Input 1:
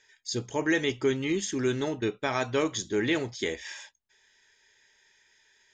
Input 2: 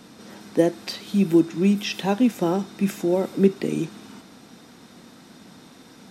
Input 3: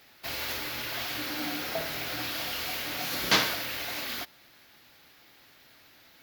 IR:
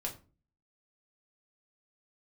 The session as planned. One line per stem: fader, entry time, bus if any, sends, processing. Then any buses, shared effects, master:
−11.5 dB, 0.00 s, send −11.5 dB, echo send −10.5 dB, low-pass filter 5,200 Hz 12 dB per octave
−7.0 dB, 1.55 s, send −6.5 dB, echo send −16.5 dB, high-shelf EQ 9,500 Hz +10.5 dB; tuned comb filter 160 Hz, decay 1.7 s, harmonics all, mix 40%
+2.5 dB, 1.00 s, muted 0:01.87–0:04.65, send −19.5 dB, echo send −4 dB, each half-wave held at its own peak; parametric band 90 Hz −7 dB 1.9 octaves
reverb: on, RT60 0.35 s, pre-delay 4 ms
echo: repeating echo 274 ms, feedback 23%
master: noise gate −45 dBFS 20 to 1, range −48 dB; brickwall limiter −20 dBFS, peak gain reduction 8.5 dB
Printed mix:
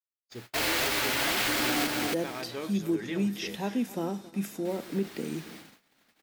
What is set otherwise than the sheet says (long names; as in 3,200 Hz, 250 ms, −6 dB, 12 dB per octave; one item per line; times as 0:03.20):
stem 3: entry 1.00 s → 0.30 s
reverb return −6.5 dB